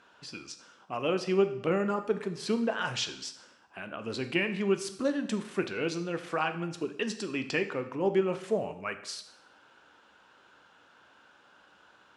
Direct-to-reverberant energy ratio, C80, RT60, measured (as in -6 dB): 8.5 dB, 14.5 dB, 0.75 s